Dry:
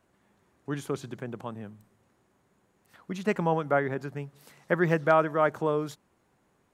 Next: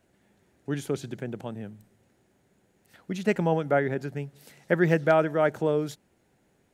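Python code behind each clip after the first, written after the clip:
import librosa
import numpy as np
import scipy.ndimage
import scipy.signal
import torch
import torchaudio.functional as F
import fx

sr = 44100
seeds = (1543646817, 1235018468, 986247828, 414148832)

y = fx.peak_eq(x, sr, hz=1100.0, db=-12.0, octaves=0.5)
y = y * librosa.db_to_amplitude(3.0)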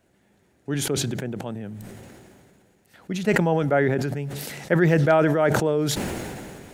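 y = fx.sustainer(x, sr, db_per_s=25.0)
y = y * librosa.db_to_amplitude(2.0)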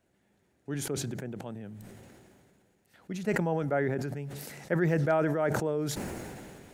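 y = fx.dynamic_eq(x, sr, hz=3300.0, q=1.7, threshold_db=-47.0, ratio=4.0, max_db=-6)
y = y * librosa.db_to_amplitude(-8.0)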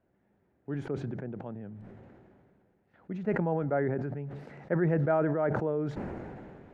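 y = scipy.signal.sosfilt(scipy.signal.butter(2, 1500.0, 'lowpass', fs=sr, output='sos'), x)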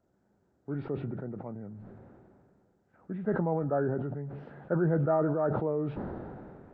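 y = fx.freq_compress(x, sr, knee_hz=1100.0, ratio=1.5)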